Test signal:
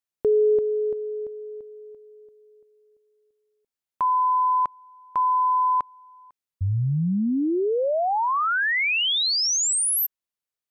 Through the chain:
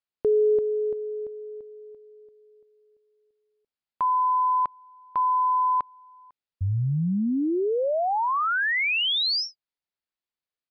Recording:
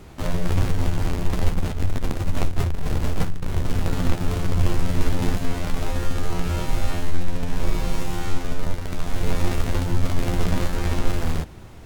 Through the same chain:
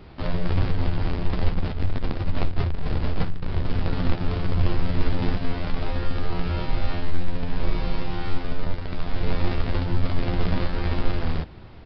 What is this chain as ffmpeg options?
-af "aresample=11025,aresample=44100,volume=-1.5dB"

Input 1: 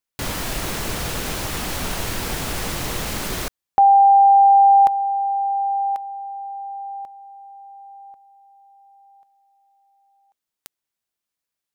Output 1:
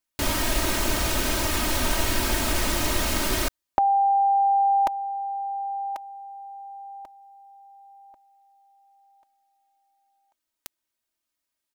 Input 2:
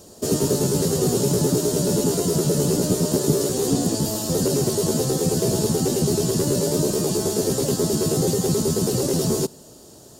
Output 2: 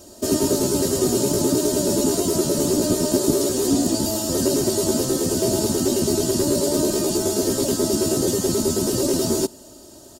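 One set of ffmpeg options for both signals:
-af "aecho=1:1:3.2:0.67"

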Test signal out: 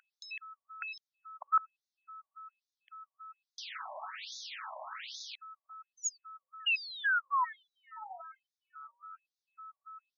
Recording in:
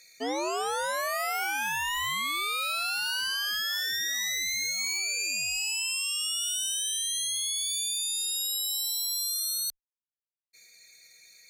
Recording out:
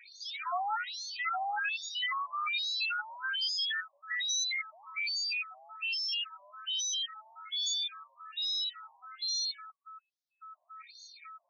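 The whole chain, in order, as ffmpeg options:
-filter_complex "[0:a]bandreject=f=50:t=h:w=6,bandreject=f=100:t=h:w=6,bandreject=f=150:t=h:w=6,bandreject=f=200:t=h:w=6,bandreject=f=250:t=h:w=6,bandreject=f=300:t=h:w=6,bandreject=f=350:t=h:w=6,bandreject=f=400:t=h:w=6,bandreject=f=450:t=h:w=6,asplit=2[a][b];[b]acompressor=threshold=-42dB:ratio=6,volume=0dB[c];[a][c]amix=inputs=2:normalize=0,aeval=exprs='val(0)+0.00562*sin(2*PI*1300*n/s)':c=same,aeval=exprs='clip(val(0),-1,0.0944)':c=same,aeval=exprs='0.126*(cos(1*acos(clip(val(0)/0.126,-1,1)))-cos(1*PI/2))+0.0126*(cos(4*acos(clip(val(0)/0.126,-1,1)))-cos(4*PI/2))':c=same,afftfilt=real='re*between(b*sr/1024,780*pow(4900/780,0.5+0.5*sin(2*PI*1.2*pts/sr))/1.41,780*pow(4900/780,0.5+0.5*sin(2*PI*1.2*pts/sr))*1.41)':imag='im*between(b*sr/1024,780*pow(4900/780,0.5+0.5*sin(2*PI*1.2*pts/sr))/1.41,780*pow(4900/780,0.5+0.5*sin(2*PI*1.2*pts/sr))*1.41)':win_size=1024:overlap=0.75"

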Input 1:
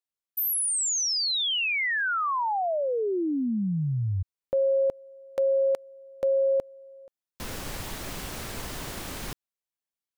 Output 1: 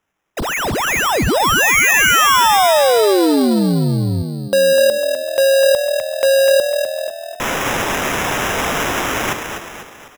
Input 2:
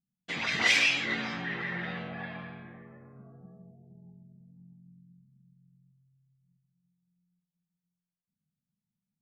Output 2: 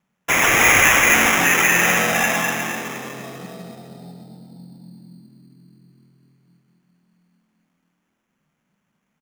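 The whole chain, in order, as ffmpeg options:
-filter_complex "[0:a]asplit=2[a][b];[b]highpass=f=720:p=1,volume=26dB,asoftclip=type=tanh:threshold=-11dB[c];[a][c]amix=inputs=2:normalize=0,lowpass=f=3.7k:p=1,volume=-6dB,asplit=7[d][e][f][g][h][i][j];[e]adelay=250,afreqshift=40,volume=-7dB[k];[f]adelay=500,afreqshift=80,volume=-13.4dB[l];[g]adelay=750,afreqshift=120,volume=-19.8dB[m];[h]adelay=1000,afreqshift=160,volume=-26.1dB[n];[i]adelay=1250,afreqshift=200,volume=-32.5dB[o];[j]adelay=1500,afreqshift=240,volume=-38.9dB[p];[d][k][l][m][n][o][p]amix=inputs=7:normalize=0,acrusher=samples=10:mix=1:aa=0.000001,volume=4.5dB"

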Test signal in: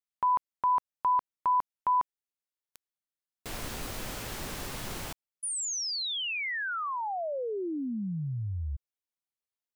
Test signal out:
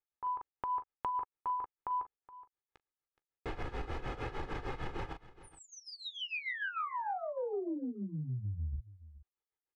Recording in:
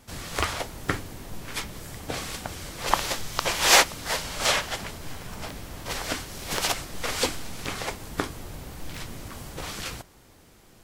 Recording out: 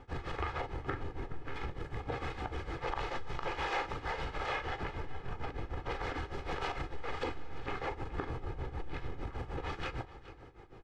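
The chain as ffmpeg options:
-filter_complex "[0:a]asplit=2[a][b];[b]aecho=0:1:15|40:0.2|0.282[c];[a][c]amix=inputs=2:normalize=0,tremolo=f=6.6:d=0.85,lowpass=1.8k,aecho=1:1:2.4:0.6,acompressor=threshold=-40dB:ratio=5:attack=14:release=21:knee=1:detection=rms,asplit=2[d][e];[e]aecho=0:1:421:0.141[f];[d][f]amix=inputs=2:normalize=0,volume=3.5dB"

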